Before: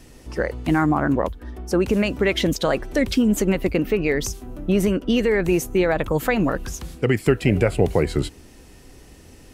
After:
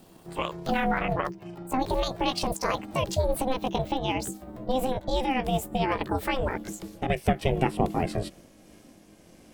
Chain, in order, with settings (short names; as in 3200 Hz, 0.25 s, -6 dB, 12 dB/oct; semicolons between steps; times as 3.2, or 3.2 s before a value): gliding pitch shift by +8.5 st ending unshifted; ring modulator 260 Hz; gain -3 dB